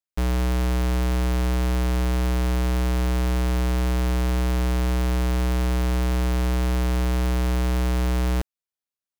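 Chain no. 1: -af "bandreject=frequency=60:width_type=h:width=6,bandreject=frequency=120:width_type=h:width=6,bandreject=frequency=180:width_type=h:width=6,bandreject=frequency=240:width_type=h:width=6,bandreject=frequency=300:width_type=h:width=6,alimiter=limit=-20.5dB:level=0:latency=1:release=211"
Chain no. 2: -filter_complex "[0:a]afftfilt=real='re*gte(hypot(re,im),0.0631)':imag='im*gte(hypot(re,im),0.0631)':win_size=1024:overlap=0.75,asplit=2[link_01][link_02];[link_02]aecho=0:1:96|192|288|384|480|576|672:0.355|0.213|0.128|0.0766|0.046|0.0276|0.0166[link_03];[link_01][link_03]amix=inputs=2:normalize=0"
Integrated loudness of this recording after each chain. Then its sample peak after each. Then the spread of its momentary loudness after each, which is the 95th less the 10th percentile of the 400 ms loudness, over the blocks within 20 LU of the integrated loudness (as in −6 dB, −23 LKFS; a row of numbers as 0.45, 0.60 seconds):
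−32.0, −21.5 LKFS; −20.5, −15.0 dBFS; 0, 1 LU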